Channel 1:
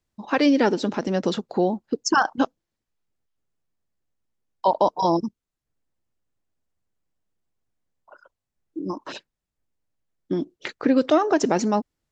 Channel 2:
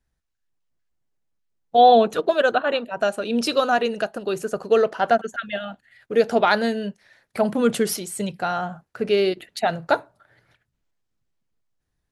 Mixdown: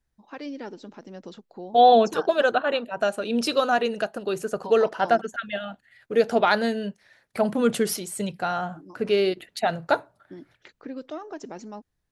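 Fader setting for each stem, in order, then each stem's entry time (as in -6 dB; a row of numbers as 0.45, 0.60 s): -17.5, -2.0 dB; 0.00, 0.00 s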